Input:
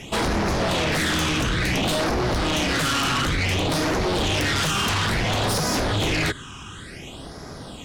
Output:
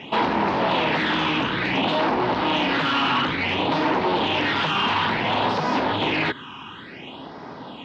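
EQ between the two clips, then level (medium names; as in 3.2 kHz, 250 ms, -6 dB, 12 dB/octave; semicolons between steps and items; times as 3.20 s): cabinet simulation 180–3700 Hz, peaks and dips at 260 Hz +4 dB, 920 Hz +10 dB, 2.8 kHz +3 dB; 0.0 dB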